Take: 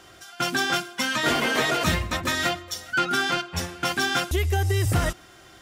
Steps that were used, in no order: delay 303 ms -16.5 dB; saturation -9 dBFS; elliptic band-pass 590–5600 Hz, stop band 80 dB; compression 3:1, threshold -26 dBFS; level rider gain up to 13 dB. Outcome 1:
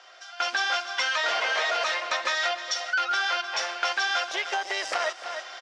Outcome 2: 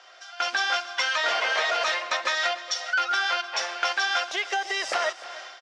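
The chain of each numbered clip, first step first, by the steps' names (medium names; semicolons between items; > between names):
delay > level rider > saturation > elliptic band-pass > compression; elliptic band-pass > saturation > level rider > compression > delay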